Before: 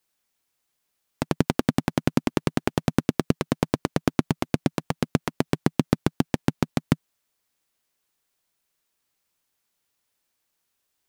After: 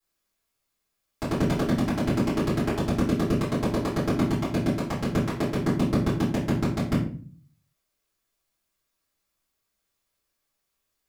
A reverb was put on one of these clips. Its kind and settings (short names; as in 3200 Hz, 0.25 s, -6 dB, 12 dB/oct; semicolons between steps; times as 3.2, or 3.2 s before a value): shoebox room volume 37 m³, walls mixed, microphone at 2.8 m; gain -14.5 dB